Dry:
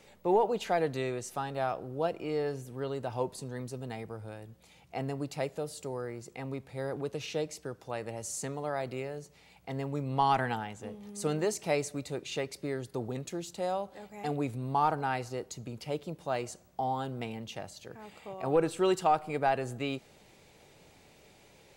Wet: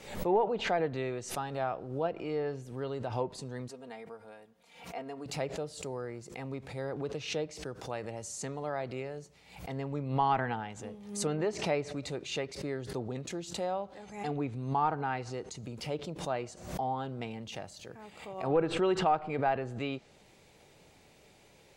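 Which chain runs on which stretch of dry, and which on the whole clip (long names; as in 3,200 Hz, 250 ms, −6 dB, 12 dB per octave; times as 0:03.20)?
0:03.68–0:05.26: high-pass filter 680 Hz 6 dB per octave + high-shelf EQ 3,000 Hz −10 dB + comb filter 4.3 ms, depth 58%
0:14.01–0:15.58: parametric band 590 Hz −5 dB 0.26 octaves + bad sample-rate conversion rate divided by 2×, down none, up filtered
whole clip: treble cut that deepens with the level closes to 2,800 Hz, closed at −27 dBFS; background raised ahead of every attack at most 89 dB per second; level −1.5 dB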